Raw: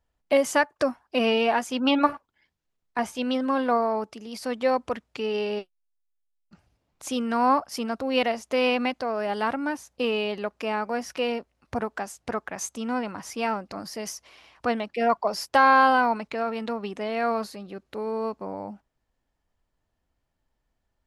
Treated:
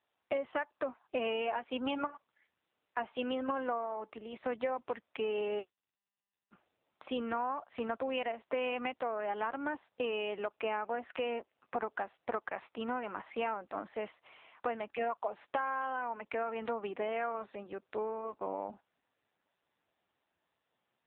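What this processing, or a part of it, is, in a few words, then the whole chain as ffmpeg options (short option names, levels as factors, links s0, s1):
voicemail: -af "highpass=350,lowpass=2900,acompressor=threshold=0.0316:ratio=12" -ar 8000 -c:a libopencore_amrnb -b:a 6700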